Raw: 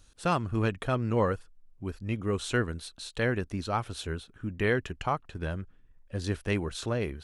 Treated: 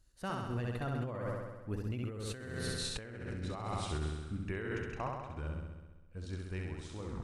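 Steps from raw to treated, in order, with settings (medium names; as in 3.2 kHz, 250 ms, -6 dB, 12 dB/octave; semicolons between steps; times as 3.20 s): tape stop on the ending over 0.34 s; Doppler pass-by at 2.77 s, 29 m/s, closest 15 m; peaking EQ 3.3 kHz -5.5 dB 0.2 oct; flutter echo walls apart 11.3 m, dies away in 1.2 s; compressor with a negative ratio -38 dBFS, ratio -1; bass shelf 160 Hz +5 dB; trim -2 dB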